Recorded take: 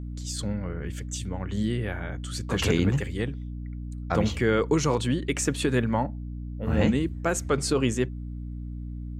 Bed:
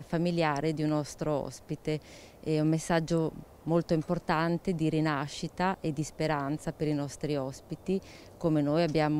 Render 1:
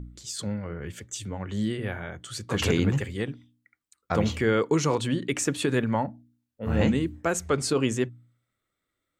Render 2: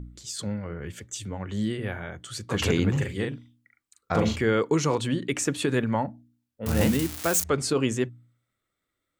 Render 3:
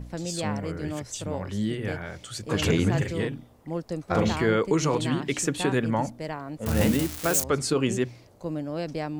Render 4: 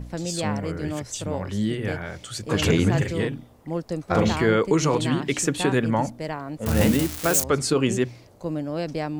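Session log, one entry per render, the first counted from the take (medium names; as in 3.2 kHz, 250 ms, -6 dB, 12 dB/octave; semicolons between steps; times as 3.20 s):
de-hum 60 Hz, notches 5
2.91–4.36 s: doubling 41 ms -4 dB; 6.66–7.44 s: zero-crossing glitches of -18.5 dBFS
add bed -4.5 dB
trim +3 dB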